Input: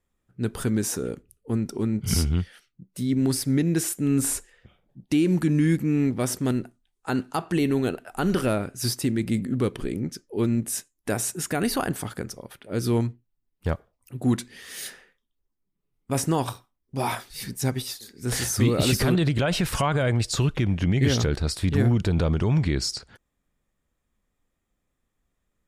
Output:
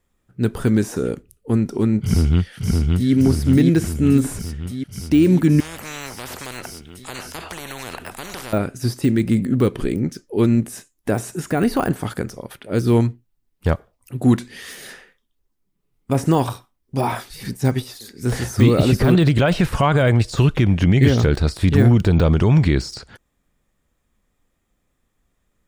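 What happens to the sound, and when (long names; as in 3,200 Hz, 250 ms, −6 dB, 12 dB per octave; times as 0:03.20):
0:02.00–0:03.12: delay throw 570 ms, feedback 65%, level −2 dB
0:05.60–0:08.53: every bin compressed towards the loudest bin 10 to 1
whole clip: de-essing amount 95%; level +7.5 dB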